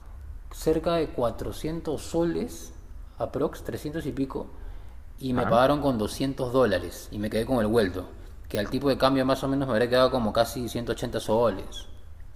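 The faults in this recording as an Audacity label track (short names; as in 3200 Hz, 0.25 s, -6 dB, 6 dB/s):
8.550000	8.550000	pop -13 dBFS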